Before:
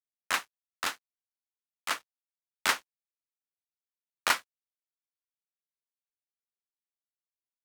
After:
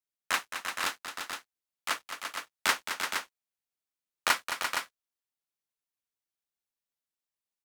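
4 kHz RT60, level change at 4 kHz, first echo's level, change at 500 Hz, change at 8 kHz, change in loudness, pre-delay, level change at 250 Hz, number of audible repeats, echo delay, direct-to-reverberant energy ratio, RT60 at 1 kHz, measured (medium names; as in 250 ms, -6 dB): no reverb, +2.0 dB, -9.0 dB, +2.0 dB, +2.0 dB, -0.5 dB, no reverb, +2.0 dB, 3, 217 ms, no reverb, no reverb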